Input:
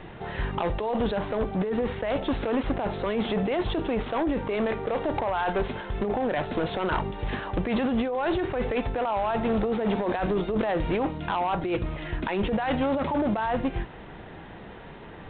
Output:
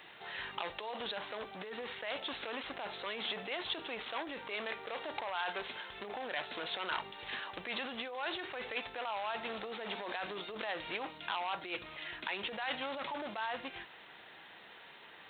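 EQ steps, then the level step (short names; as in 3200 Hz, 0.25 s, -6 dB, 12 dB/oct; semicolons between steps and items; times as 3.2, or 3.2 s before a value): differentiator; +7.0 dB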